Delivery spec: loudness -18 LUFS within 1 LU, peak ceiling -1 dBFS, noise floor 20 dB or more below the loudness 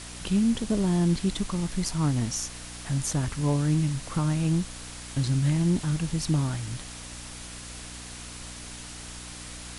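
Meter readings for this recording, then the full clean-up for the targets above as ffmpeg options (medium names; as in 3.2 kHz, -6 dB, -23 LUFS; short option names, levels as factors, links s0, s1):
hum 60 Hz; highest harmonic 300 Hz; hum level -42 dBFS; noise floor -41 dBFS; noise floor target -47 dBFS; loudness -27.0 LUFS; peak level -14.0 dBFS; loudness target -18.0 LUFS
-> -af "bandreject=f=60:t=h:w=4,bandreject=f=120:t=h:w=4,bandreject=f=180:t=h:w=4,bandreject=f=240:t=h:w=4,bandreject=f=300:t=h:w=4"
-af "afftdn=nr=6:nf=-41"
-af "volume=2.82"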